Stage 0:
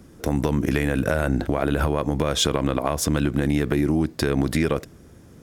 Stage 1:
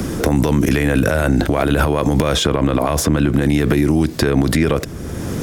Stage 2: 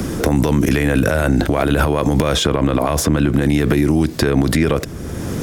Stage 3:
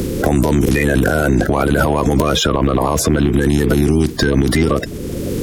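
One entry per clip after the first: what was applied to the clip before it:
in parallel at −2 dB: output level in coarse steps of 10 dB; on the sum: boost into a limiter +13.5 dB; multiband upward and downward compressor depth 70%; level −4 dB
no processing that can be heard
spectral magnitudes quantised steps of 30 dB; in parallel at −4 dB: soft clipping −14 dBFS, distortion −10 dB; on the sum: level −1 dB

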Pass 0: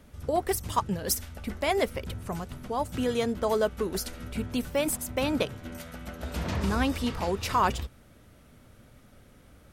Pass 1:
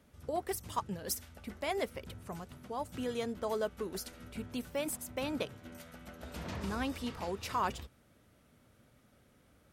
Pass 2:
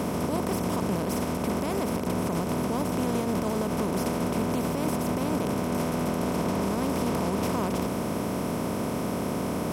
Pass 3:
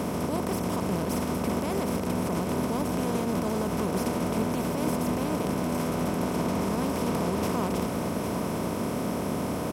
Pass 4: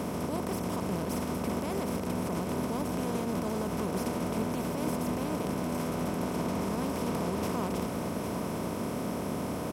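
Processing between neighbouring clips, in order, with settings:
high-pass filter 95 Hz 6 dB per octave; level −8.5 dB
compressor on every frequency bin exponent 0.2; parametric band 170 Hz +14.5 dB 2.5 octaves; brickwall limiter −12.5 dBFS, peak gain reduction 6.5 dB; level −5.5 dB
single-tap delay 808 ms −8.5 dB; level −1 dB
surface crackle 45 per second −57 dBFS; level −4 dB

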